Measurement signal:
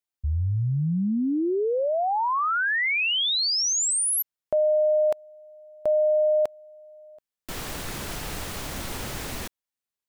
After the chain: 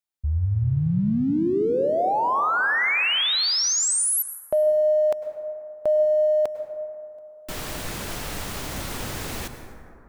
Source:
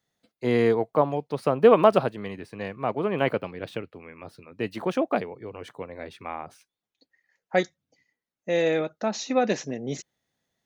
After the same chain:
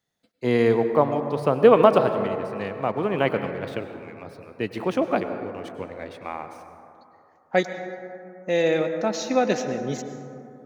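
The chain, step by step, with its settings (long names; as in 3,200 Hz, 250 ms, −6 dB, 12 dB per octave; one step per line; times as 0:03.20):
in parallel at −8.5 dB: dead-zone distortion −44 dBFS
on the sum: dense smooth reverb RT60 2.8 s, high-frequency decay 0.3×, pre-delay 90 ms, DRR 8 dB
level −1 dB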